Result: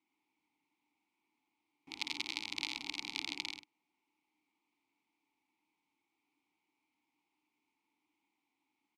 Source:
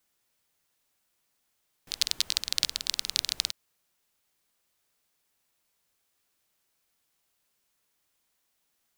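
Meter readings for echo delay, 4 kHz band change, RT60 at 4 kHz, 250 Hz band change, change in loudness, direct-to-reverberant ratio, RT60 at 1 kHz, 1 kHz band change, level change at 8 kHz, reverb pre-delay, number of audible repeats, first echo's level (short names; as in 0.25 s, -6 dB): 55 ms, -11.5 dB, none, +7.0 dB, -11.0 dB, none, none, -0.5 dB, -18.0 dB, none, 3, -8.0 dB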